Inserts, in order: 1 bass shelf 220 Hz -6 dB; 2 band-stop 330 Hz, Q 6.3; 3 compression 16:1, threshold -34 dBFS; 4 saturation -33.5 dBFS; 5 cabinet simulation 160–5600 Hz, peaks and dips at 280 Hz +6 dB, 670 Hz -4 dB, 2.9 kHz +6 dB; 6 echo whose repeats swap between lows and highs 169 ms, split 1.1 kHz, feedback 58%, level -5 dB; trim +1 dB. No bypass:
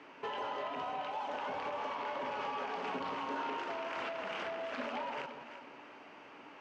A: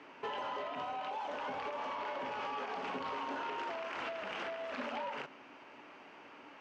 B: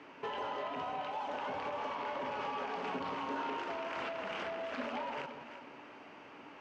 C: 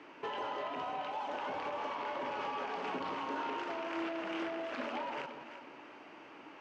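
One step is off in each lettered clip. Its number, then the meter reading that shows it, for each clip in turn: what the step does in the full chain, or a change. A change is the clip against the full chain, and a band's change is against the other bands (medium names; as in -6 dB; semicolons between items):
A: 6, echo-to-direct -7.0 dB to none; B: 1, 125 Hz band +3.5 dB; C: 2, 250 Hz band +4.5 dB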